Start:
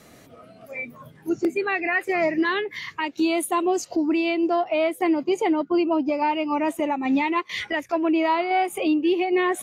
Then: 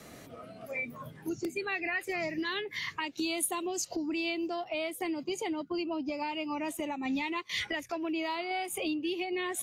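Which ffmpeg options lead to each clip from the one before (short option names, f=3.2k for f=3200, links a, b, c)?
-filter_complex "[0:a]acrossover=split=150|3000[a][b][c];[b]acompressor=threshold=-35dB:ratio=5[d];[a][d][c]amix=inputs=3:normalize=0"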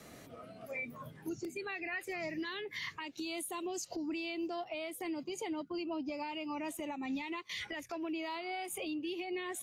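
-af "alimiter=level_in=3.5dB:limit=-24dB:level=0:latency=1:release=68,volume=-3.5dB,volume=-3.5dB"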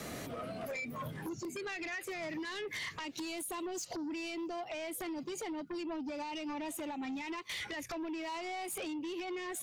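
-af "acompressor=threshold=-45dB:ratio=12,aeval=exprs='0.0188*sin(PI/2*2.82*val(0)/0.0188)':c=same,volume=-1.5dB"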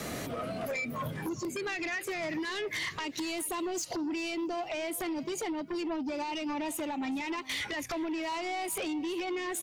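-filter_complex "[0:a]asplit=2[a][b];[b]adelay=407,lowpass=f=4.6k:p=1,volume=-18.5dB,asplit=2[c][d];[d]adelay=407,lowpass=f=4.6k:p=1,volume=0.26[e];[a][c][e]amix=inputs=3:normalize=0,volume=5.5dB"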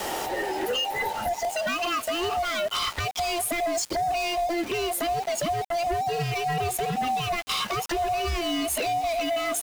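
-af "afftfilt=real='real(if(between(b,1,1008),(2*floor((b-1)/48)+1)*48-b,b),0)':imag='imag(if(between(b,1,1008),(2*floor((b-1)/48)+1)*48-b,b),0)*if(between(b,1,1008),-1,1)':win_size=2048:overlap=0.75,aeval=exprs='val(0)*gte(abs(val(0)),0.0075)':c=same,volume=7.5dB"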